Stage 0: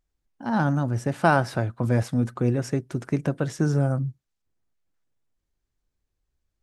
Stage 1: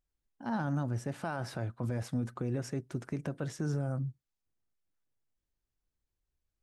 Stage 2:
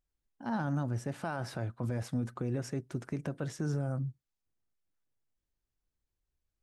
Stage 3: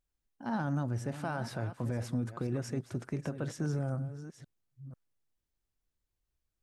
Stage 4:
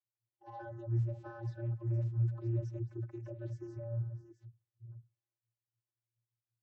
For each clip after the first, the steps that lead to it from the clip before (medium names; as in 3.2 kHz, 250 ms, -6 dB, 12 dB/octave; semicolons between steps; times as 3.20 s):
peak limiter -17 dBFS, peak gain reduction 11 dB; trim -7.5 dB
no audible change
chunks repeated in reverse 494 ms, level -12 dB
coarse spectral quantiser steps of 30 dB; vocoder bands 32, square 116 Hz